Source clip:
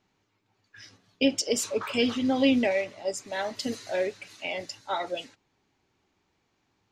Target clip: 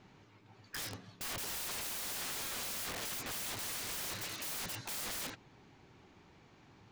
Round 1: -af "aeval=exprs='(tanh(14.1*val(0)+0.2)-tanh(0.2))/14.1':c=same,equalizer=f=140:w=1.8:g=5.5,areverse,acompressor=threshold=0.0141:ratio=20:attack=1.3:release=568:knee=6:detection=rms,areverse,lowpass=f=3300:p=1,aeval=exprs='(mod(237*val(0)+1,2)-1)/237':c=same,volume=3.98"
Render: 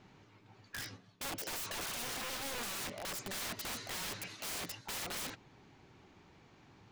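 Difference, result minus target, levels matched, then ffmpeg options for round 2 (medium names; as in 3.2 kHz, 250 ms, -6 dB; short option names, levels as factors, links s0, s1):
compression: peak gain reduction +10 dB
-af "aeval=exprs='(tanh(14.1*val(0)+0.2)-tanh(0.2))/14.1':c=same,equalizer=f=140:w=1.8:g=5.5,areverse,acompressor=threshold=0.0473:ratio=20:attack=1.3:release=568:knee=6:detection=rms,areverse,lowpass=f=3300:p=1,aeval=exprs='(mod(237*val(0)+1,2)-1)/237':c=same,volume=3.98"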